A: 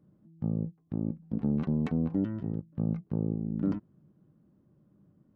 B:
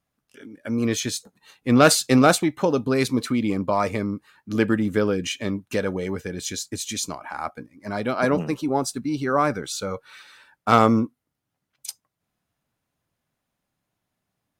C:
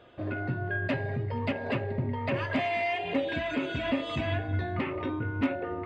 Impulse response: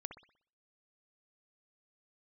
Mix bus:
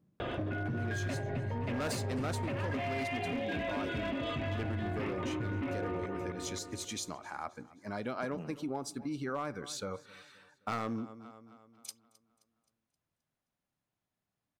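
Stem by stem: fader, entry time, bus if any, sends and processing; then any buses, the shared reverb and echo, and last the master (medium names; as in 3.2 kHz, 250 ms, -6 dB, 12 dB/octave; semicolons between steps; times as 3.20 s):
-6.0 dB, 0.00 s, no send, no echo send, auto duck -11 dB, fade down 0.30 s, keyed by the second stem
-10.5 dB, 0.00 s, send -12 dB, echo send -21.5 dB, none
-4.5 dB, 0.20 s, send -16 dB, echo send -6.5 dB, tone controls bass +3 dB, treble -4 dB; level flattener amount 70%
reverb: on, pre-delay 60 ms
echo: feedback delay 263 ms, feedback 47%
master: treble shelf 9.5 kHz -5.5 dB; hard clipper -21 dBFS, distortion -14 dB; compression, threshold -33 dBFS, peak gain reduction 10 dB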